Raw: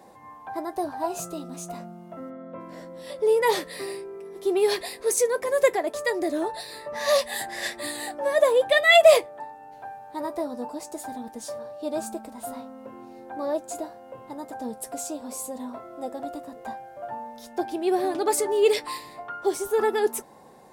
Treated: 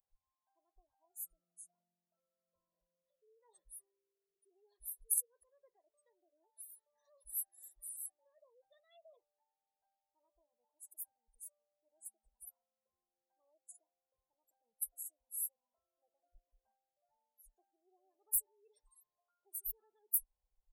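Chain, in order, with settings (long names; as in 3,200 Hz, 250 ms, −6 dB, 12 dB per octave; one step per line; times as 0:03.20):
gate on every frequency bin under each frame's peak −20 dB strong
inverse Chebyshev band-stop filter 110–5,200 Hz, stop band 60 dB
level +11 dB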